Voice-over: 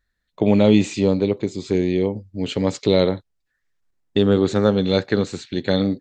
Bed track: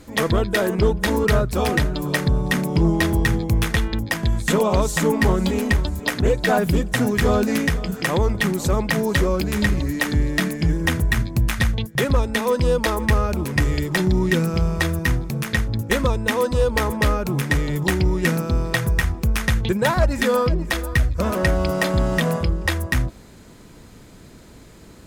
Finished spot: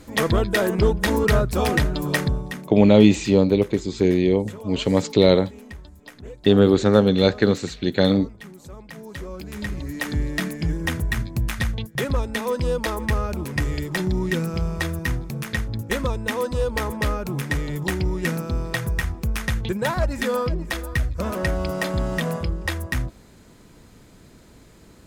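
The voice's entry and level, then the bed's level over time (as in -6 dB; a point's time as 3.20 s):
2.30 s, +1.5 dB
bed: 2.21 s -0.5 dB
2.78 s -20.5 dB
8.80 s -20.5 dB
10.13 s -4.5 dB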